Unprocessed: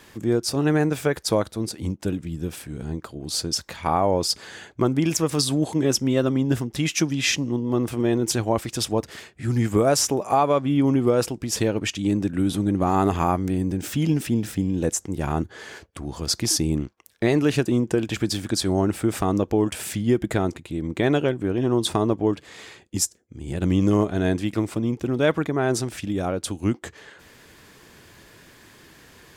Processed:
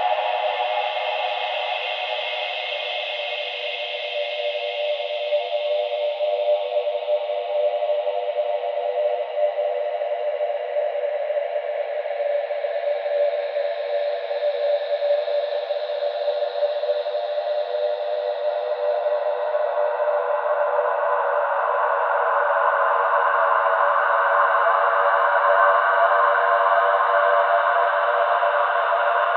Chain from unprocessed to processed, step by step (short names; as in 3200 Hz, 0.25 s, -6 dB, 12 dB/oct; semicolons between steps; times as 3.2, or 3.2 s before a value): mistuned SSB +290 Hz 290–3300 Hz; Paulstretch 21×, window 0.50 s, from 11.76; gain +4 dB